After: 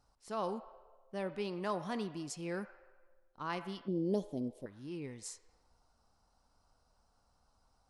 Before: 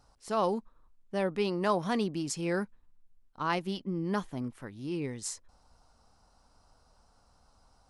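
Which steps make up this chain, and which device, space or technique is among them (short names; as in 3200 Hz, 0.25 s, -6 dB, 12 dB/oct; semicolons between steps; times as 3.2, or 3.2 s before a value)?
filtered reverb send (on a send: HPF 560 Hz 24 dB/oct + LPF 3200 Hz 12 dB/oct + reverb RT60 1.4 s, pre-delay 34 ms, DRR 11 dB); 3.88–4.66 on the sum: EQ curve 100 Hz 0 dB, 550 Hz +13 dB, 1400 Hz -25 dB, 3600 Hz +2 dB; gain -8.5 dB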